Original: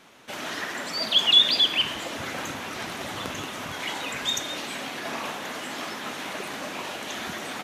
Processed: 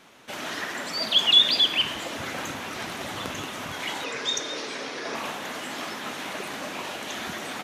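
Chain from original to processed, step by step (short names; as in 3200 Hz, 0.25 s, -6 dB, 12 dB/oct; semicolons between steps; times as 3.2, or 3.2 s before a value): 1.62–3.29 requantised 12-bit, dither none; 4.04–5.15 speaker cabinet 150–9100 Hz, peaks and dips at 200 Hz -7 dB, 450 Hz +9 dB, 750 Hz -4 dB, 2900 Hz -4 dB, 5300 Hz +6 dB, 7900 Hz -8 dB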